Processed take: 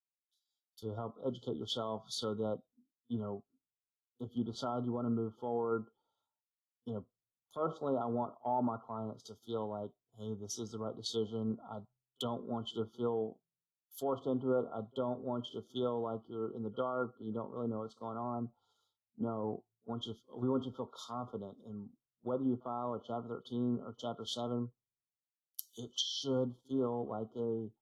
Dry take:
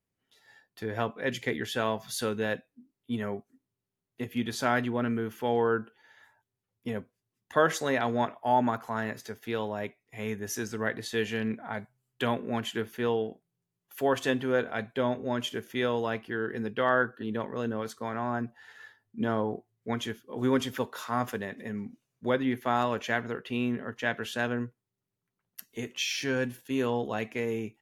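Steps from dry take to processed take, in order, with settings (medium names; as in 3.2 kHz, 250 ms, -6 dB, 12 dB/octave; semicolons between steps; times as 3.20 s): FFT band-reject 1.4–3 kHz; low-pass that closes with the level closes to 1.6 kHz, closed at -27.5 dBFS; peak limiter -21.5 dBFS, peak gain reduction 10.5 dB; pre-echo 47 ms -23 dB; three bands expanded up and down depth 100%; trim -5 dB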